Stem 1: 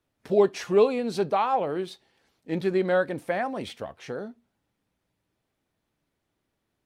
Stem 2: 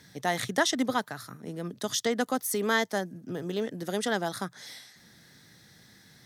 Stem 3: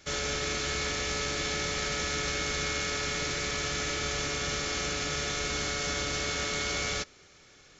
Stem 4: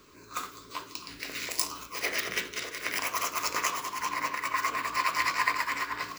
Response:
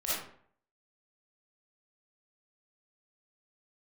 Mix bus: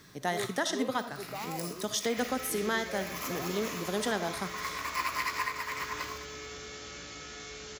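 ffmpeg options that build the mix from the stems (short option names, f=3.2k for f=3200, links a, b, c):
-filter_complex "[0:a]volume=-16.5dB[a];[1:a]volume=-3dB,asplit=3[b][c][d];[c]volume=-15.5dB[e];[2:a]highpass=58,acompressor=threshold=-36dB:ratio=5,flanger=delay=16:depth=2.5:speed=0.26,adelay=2100,volume=-3.5dB,asplit=2[f][g];[g]volume=-7.5dB[h];[3:a]equalizer=f=12k:w=4.2:g=9,volume=-5dB,asplit=3[i][j][k];[j]volume=-14dB[l];[k]volume=-14.5dB[m];[d]apad=whole_len=272775[n];[i][n]sidechaincompress=threshold=-49dB:ratio=8:attack=9.1:release=195[o];[4:a]atrim=start_sample=2205[p];[e][l]amix=inputs=2:normalize=0[q];[q][p]afir=irnorm=-1:irlink=0[r];[h][m]amix=inputs=2:normalize=0,aecho=0:1:207|414|621|828|1035|1242:1|0.46|0.212|0.0973|0.0448|0.0206[s];[a][b][f][o][r][s]amix=inputs=6:normalize=0,alimiter=limit=-18.5dB:level=0:latency=1:release=483"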